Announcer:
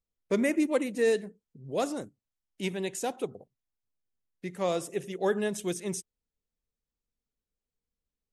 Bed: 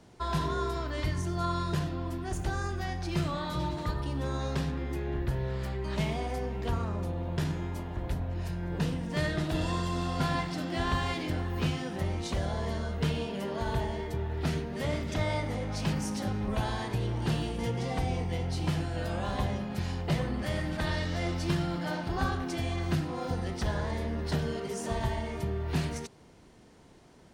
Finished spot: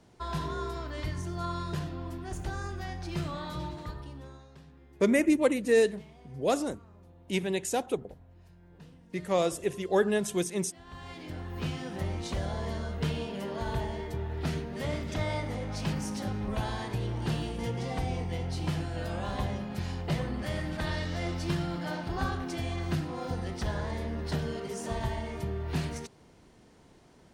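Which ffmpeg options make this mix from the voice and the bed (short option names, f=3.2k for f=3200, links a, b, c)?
-filter_complex "[0:a]adelay=4700,volume=2.5dB[a];[1:a]volume=16.5dB,afade=t=out:st=3.49:d=0.97:silence=0.125893,afade=t=in:st=10.85:d=1.14:silence=0.1[b];[a][b]amix=inputs=2:normalize=0"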